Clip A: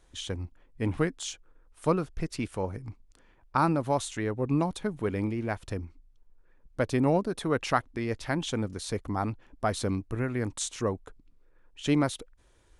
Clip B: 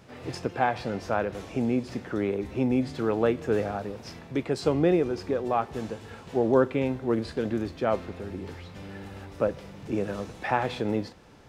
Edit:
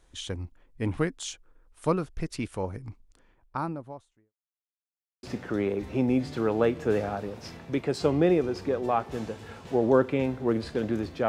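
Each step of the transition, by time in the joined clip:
clip A
2.91–4.34 studio fade out
4.34–5.23 mute
5.23 switch to clip B from 1.85 s

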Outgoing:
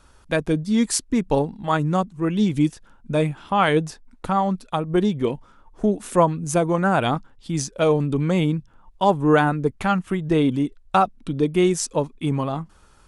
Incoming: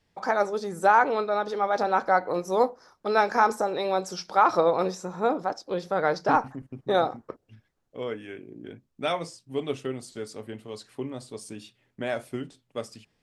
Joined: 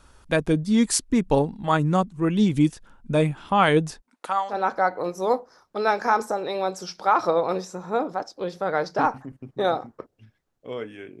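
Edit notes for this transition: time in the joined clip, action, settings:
outgoing
4–4.56 HPF 250 Hz -> 1500 Hz
4.52 switch to incoming from 1.82 s, crossfade 0.08 s

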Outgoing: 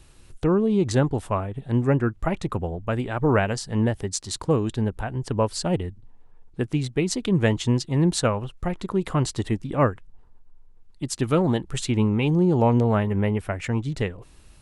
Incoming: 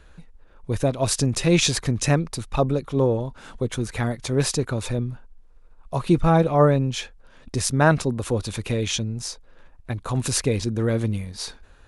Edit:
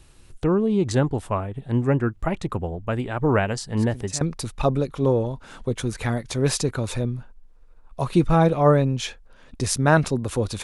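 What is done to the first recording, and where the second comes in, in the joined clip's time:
outgoing
3.77 add incoming from 1.71 s 0.44 s -17.5 dB
4.21 switch to incoming from 2.15 s

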